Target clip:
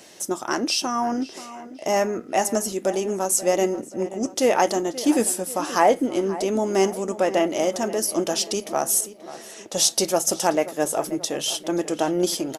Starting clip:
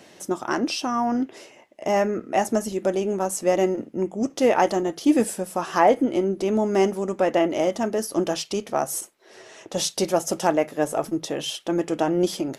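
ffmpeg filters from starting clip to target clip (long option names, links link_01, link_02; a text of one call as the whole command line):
ffmpeg -i in.wav -filter_complex "[0:a]bass=frequency=250:gain=-4,treble=frequency=4000:gain=9,asplit=2[link_01][link_02];[link_02]adelay=532,lowpass=frequency=2800:poles=1,volume=-15dB,asplit=2[link_03][link_04];[link_04]adelay=532,lowpass=frequency=2800:poles=1,volume=0.52,asplit=2[link_05][link_06];[link_06]adelay=532,lowpass=frequency=2800:poles=1,volume=0.52,asplit=2[link_07][link_08];[link_08]adelay=532,lowpass=frequency=2800:poles=1,volume=0.52,asplit=2[link_09][link_10];[link_10]adelay=532,lowpass=frequency=2800:poles=1,volume=0.52[link_11];[link_01][link_03][link_05][link_07][link_09][link_11]amix=inputs=6:normalize=0" out.wav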